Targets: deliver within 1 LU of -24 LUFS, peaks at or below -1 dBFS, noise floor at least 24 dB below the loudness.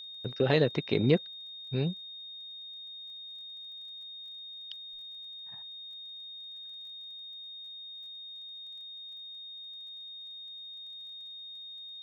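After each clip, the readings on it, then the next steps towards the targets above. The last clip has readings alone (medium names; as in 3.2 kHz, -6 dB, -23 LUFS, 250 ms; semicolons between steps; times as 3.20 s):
tick rate 21 per s; steady tone 3.7 kHz; tone level -42 dBFS; loudness -36.0 LUFS; peak level -11.0 dBFS; loudness target -24.0 LUFS
-> de-click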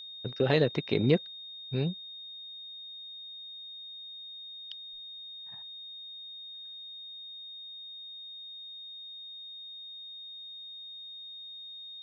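tick rate 0 per s; steady tone 3.7 kHz; tone level -42 dBFS
-> band-stop 3.7 kHz, Q 30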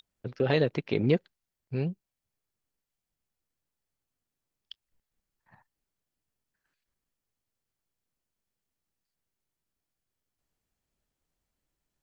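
steady tone not found; loudness -29.0 LUFS; peak level -11.5 dBFS; loudness target -24.0 LUFS
-> trim +5 dB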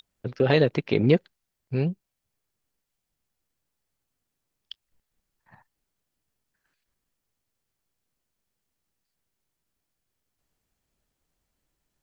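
loudness -24.0 LUFS; peak level -6.5 dBFS; noise floor -83 dBFS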